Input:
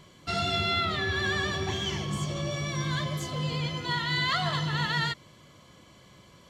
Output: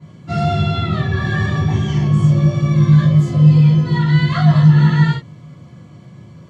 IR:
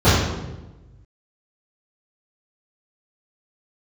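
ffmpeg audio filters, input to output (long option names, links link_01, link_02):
-filter_complex "[1:a]atrim=start_sample=2205,atrim=end_sample=6174,asetrate=70560,aresample=44100[link_01];[0:a][link_01]afir=irnorm=-1:irlink=0,volume=-17.5dB"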